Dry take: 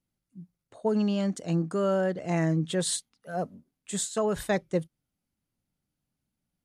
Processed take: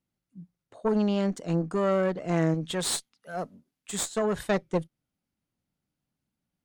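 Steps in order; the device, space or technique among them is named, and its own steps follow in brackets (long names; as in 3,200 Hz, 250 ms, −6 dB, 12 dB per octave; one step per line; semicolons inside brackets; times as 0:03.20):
0:02.54–0:04.06: tilt shelving filter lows −4 dB, about 1,400 Hz
tube preamp driven hard (tube saturation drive 20 dB, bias 0.75; low-shelf EQ 88 Hz −6 dB; high-shelf EQ 5,600 Hz −7 dB)
level +5.5 dB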